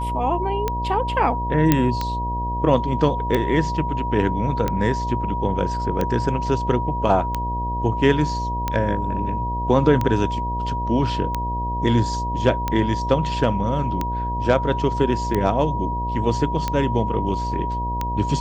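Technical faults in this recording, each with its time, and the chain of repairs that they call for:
buzz 60 Hz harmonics 12 -27 dBFS
tick 45 rpm -9 dBFS
whine 960 Hz -25 dBFS
1.72 s: pop -2 dBFS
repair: de-click; de-hum 60 Hz, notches 12; band-stop 960 Hz, Q 30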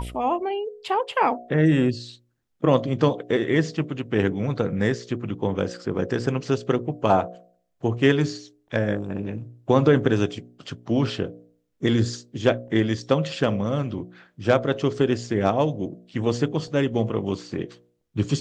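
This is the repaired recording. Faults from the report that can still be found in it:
nothing left

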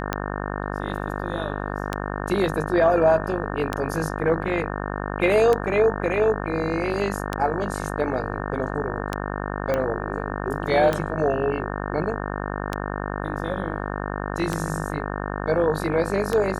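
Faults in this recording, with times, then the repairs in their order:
buzz 50 Hz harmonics 36 -29 dBFS
tick 33 1/3 rpm -9 dBFS
9.74 s: pop -12 dBFS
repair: de-click; de-hum 50 Hz, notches 36

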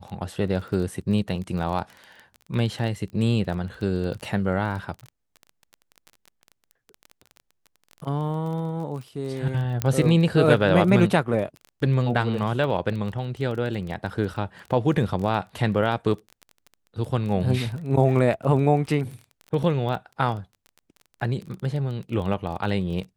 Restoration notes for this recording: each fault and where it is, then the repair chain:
crackle 21 per s -31 dBFS
9.82 s: pop -7 dBFS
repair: de-click

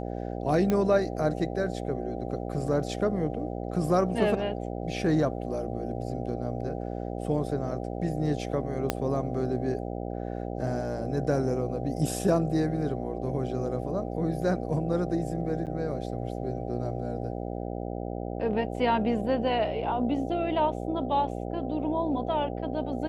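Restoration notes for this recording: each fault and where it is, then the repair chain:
buzz 60 Hz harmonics 13 -34 dBFS
0.70 s: pop -14 dBFS
8.90 s: pop -10 dBFS
15.66–15.67 s: dropout 8 ms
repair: de-click; de-hum 60 Hz, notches 13; interpolate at 15.66 s, 8 ms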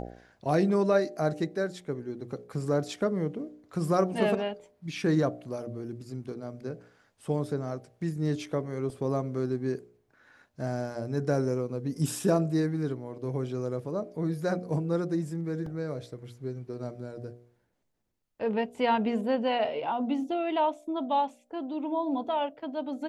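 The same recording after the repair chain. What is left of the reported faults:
8.90 s: pop

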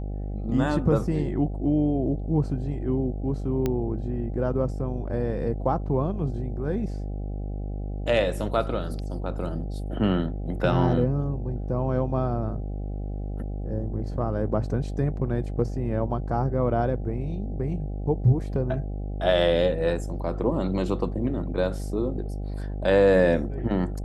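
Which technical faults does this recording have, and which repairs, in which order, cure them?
buzz 50 Hz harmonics 16 -31 dBFS
3.66 s: pop -13 dBFS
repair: de-click; de-hum 50 Hz, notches 16

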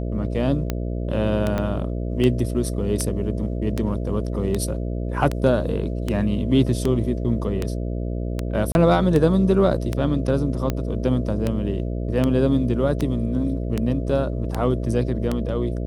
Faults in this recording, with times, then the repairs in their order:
buzz 60 Hz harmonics 11 -26 dBFS
tick 78 rpm -10 dBFS
1.58 s: dropout 2 ms
8.72–8.75 s: dropout 31 ms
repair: de-click; de-hum 60 Hz, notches 11; interpolate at 1.58 s, 2 ms; interpolate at 8.72 s, 31 ms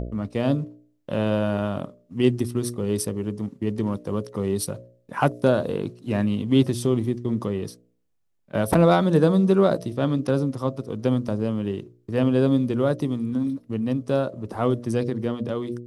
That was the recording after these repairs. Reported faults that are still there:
nothing left

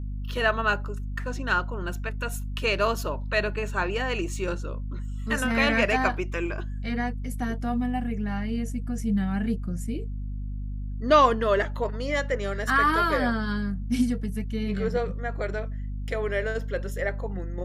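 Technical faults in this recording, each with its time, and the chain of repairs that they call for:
hum 50 Hz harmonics 5 -32 dBFS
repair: de-hum 50 Hz, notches 5

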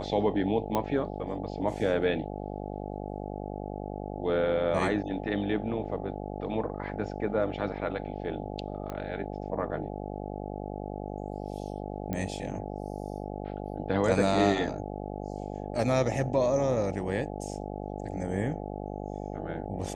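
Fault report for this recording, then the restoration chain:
buzz 50 Hz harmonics 17 -37 dBFS
0.75 s: pop -15 dBFS
8.90 s: pop -23 dBFS
12.13 s: pop -19 dBFS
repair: de-click; de-hum 50 Hz, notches 17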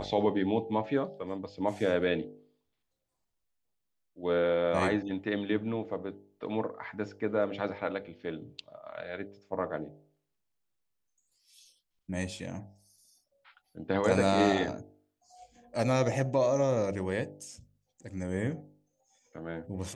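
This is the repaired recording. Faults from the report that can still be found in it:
nothing left

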